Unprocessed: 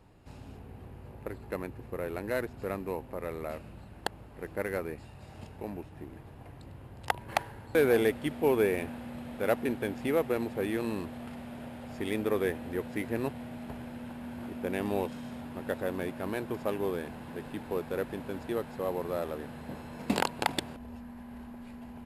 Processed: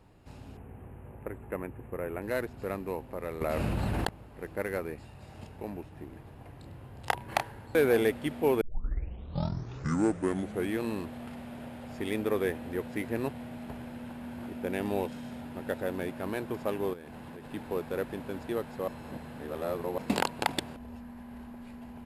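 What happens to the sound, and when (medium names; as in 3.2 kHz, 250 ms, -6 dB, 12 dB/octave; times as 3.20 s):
0.57–2.22 s: Butterworth band-stop 4.8 kHz, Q 0.84
3.41–4.09 s: level flattener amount 100%
6.56–7.43 s: doubling 30 ms -7 dB
8.61 s: tape start 2.17 s
14.46–16.13 s: band-stop 1.1 kHz
16.93–17.52 s: compression 12:1, threshold -40 dBFS
18.88–19.98 s: reverse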